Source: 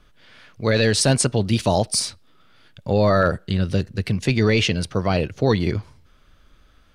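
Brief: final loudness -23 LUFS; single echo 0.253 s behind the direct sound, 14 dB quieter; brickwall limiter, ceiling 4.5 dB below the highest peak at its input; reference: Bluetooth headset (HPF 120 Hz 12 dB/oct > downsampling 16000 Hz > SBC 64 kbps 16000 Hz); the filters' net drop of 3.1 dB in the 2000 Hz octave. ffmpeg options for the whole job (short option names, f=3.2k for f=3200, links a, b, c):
-af "equalizer=f=2k:t=o:g=-4,alimiter=limit=-12dB:level=0:latency=1,highpass=120,aecho=1:1:253:0.2,aresample=16000,aresample=44100,volume=2dB" -ar 16000 -c:a sbc -b:a 64k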